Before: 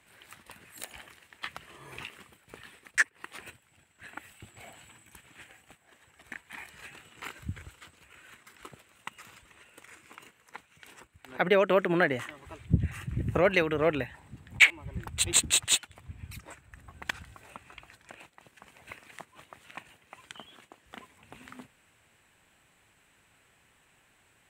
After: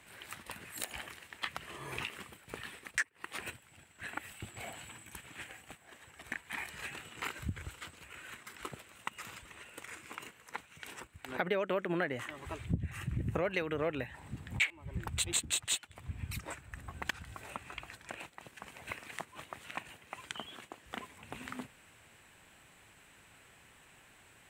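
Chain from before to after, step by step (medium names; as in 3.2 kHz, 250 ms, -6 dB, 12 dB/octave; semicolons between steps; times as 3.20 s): compression 3:1, threshold -39 dBFS, peak gain reduction 18.5 dB; trim +4.5 dB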